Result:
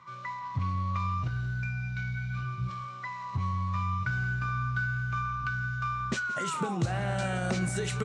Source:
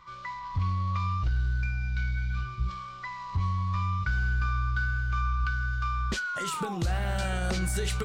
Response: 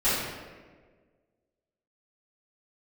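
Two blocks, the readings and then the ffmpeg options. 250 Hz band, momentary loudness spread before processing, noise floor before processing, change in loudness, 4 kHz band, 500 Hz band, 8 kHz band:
+2.0 dB, 6 LU, -41 dBFS, -1.5 dB, -3.5 dB, +1.0 dB, -2.0 dB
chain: -filter_complex "[0:a]highpass=f=100:w=0.5412,highpass=f=100:w=1.3066,equalizer=f=130:t=q:w=4:g=7,equalizer=f=240:t=q:w=4:g=4,equalizer=f=630:t=q:w=4:g=3,equalizer=f=3.3k:t=q:w=4:g=-4,equalizer=f=4.7k:t=q:w=4:g=-6,lowpass=f=8.8k:w=0.5412,lowpass=f=8.8k:w=1.3066,asplit=2[a][b];[b]aecho=0:1:174:0.141[c];[a][c]amix=inputs=2:normalize=0"

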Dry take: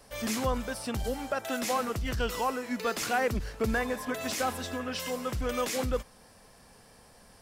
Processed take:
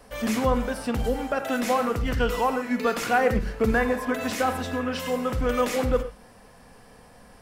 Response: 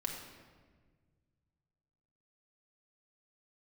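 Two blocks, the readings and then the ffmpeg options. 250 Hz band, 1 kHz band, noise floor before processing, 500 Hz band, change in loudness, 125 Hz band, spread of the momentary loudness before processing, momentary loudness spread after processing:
+7.5 dB, +6.5 dB, -57 dBFS, +7.0 dB, +6.0 dB, +5.5 dB, 5 LU, 5 LU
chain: -filter_complex "[0:a]asplit=2[a][b];[1:a]atrim=start_sample=2205,atrim=end_sample=6174,lowpass=3.3k[c];[b][c]afir=irnorm=-1:irlink=0,volume=0.5dB[d];[a][d]amix=inputs=2:normalize=0"

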